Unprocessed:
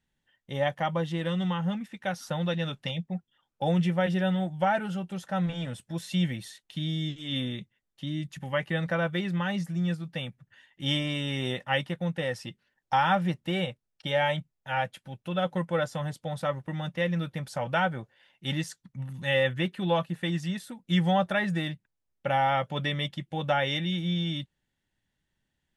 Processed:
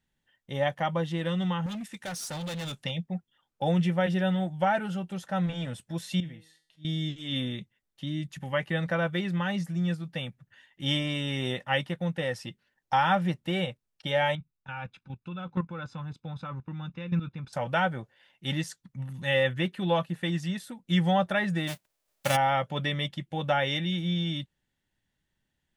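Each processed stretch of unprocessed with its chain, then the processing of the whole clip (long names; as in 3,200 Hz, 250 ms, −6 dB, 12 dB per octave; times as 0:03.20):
0:01.66–0:02.84: parametric band 8,700 Hz +13 dB 1.6 octaves + hard clipping −33 dBFS
0:06.20–0:06.85: high-shelf EQ 2,600 Hz −8 dB + volume swells 182 ms + tuned comb filter 160 Hz, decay 0.45 s, mix 80%
0:14.35–0:17.53: comb filter 0.8 ms, depth 71% + output level in coarse steps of 12 dB + high-frequency loss of the air 150 metres
0:21.67–0:22.35: spectral envelope flattened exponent 0.3 + parametric band 630 Hz +8 dB 0.39 octaves
whole clip: no processing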